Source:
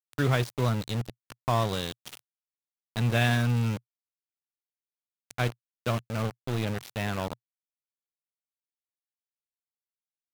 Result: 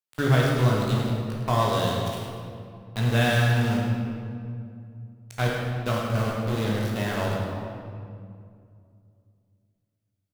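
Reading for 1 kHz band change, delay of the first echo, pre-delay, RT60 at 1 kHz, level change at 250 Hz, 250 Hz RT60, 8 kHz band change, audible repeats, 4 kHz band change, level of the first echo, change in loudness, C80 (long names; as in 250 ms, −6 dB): +5.0 dB, 105 ms, 13 ms, 2.2 s, +5.5 dB, 3.1 s, +3.5 dB, 1, +4.0 dB, −8.5 dB, +4.0 dB, 1.0 dB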